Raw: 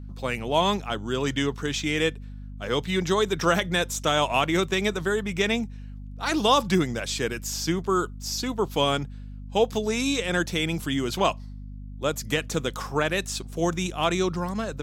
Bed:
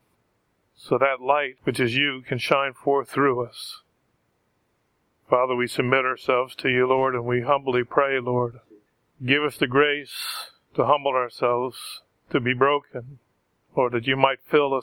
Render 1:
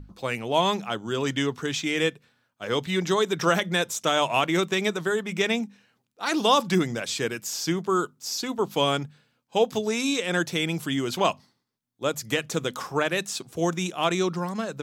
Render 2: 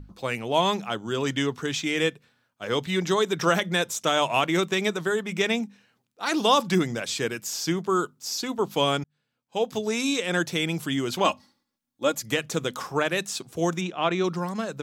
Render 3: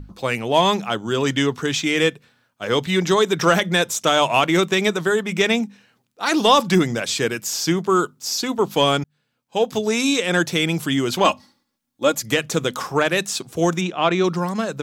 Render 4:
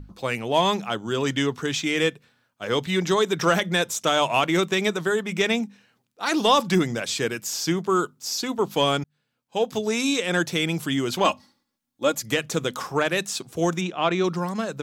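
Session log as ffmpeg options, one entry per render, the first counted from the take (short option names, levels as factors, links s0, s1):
-af "bandreject=f=50:t=h:w=6,bandreject=f=100:t=h:w=6,bandreject=f=150:t=h:w=6,bandreject=f=200:t=h:w=6,bandreject=f=250:t=h:w=6"
-filter_complex "[0:a]asettb=1/sr,asplit=3[s0][s1][s2];[s0]atrim=end=11.254[s3];[s1]atrim=start=11.25:end=12.23,asetpts=PTS-STARTPTS,afade=t=in:d=0.004:c=qsin,afade=t=out:st=0.976:d=0.004:c=qsin,aecho=1:1:3.6:0.65,atrim=end_sample=43218[s4];[s2]atrim=start=12.226[s5];[s3][s4]acrossfade=d=0.004:c1=hsin:c2=qsin[s6];[s6][s5]acrossfade=d=0.004:c1=qsin:c2=hsin,asplit=3[s7][s8][s9];[s7]afade=t=out:st=13.8:d=0.02[s10];[s8]highpass=110,lowpass=3400,afade=t=in:st=13.8:d=0.02,afade=t=out:st=14.23:d=0.02[s11];[s9]afade=t=in:st=14.23:d=0.02[s12];[s10][s11][s12]amix=inputs=3:normalize=0,asplit=2[s13][s14];[s13]atrim=end=9.04,asetpts=PTS-STARTPTS,afade=t=out:st=9.036:d=0.004:c=hsin[s15];[s14]atrim=start=9.04,asetpts=PTS-STARTPTS,afade=t=in:d=0.91[s16];[s15][s16]concat=n=2:v=0:a=1"
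-af "acontrast=62"
-af "volume=0.631"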